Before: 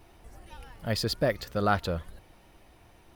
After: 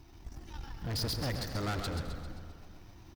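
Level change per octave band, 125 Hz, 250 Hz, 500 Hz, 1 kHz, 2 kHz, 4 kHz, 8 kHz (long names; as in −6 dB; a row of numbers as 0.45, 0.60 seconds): −2.0, −6.0, −11.5, −10.0, −8.0, −2.5, −1.0 decibels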